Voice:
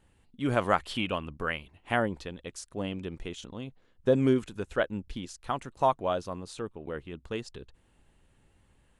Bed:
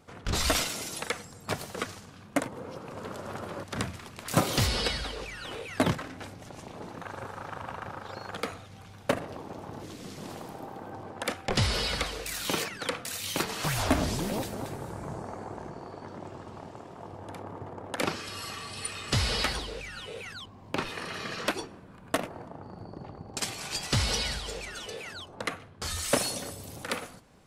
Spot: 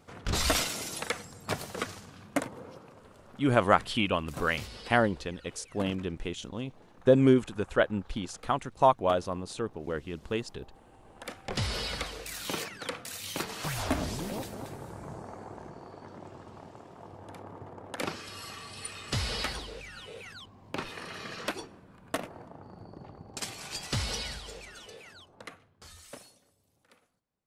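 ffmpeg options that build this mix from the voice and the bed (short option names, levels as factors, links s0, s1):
-filter_complex "[0:a]adelay=3000,volume=1.41[s0];[1:a]volume=3.76,afade=t=out:st=2.25:d=0.79:silence=0.158489,afade=t=in:st=10.99:d=0.73:silence=0.251189,afade=t=out:st=23.88:d=2.51:silence=0.0530884[s1];[s0][s1]amix=inputs=2:normalize=0"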